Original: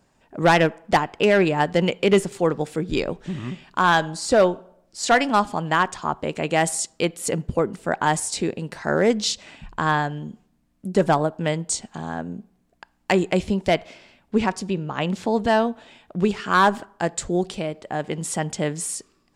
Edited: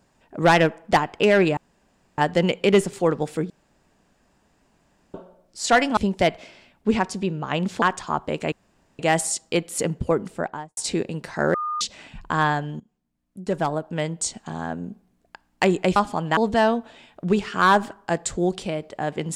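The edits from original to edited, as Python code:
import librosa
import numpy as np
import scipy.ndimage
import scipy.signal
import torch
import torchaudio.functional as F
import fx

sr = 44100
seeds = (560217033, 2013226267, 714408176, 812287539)

y = fx.studio_fade_out(x, sr, start_s=7.72, length_s=0.53)
y = fx.edit(y, sr, fx.insert_room_tone(at_s=1.57, length_s=0.61),
    fx.room_tone_fill(start_s=2.89, length_s=1.64),
    fx.swap(start_s=5.36, length_s=0.41, other_s=13.44, other_length_s=1.85),
    fx.insert_room_tone(at_s=6.47, length_s=0.47),
    fx.bleep(start_s=9.02, length_s=0.27, hz=1220.0, db=-24.0),
    fx.fade_in_from(start_s=10.28, length_s=1.7, floor_db=-19.5), tone=tone)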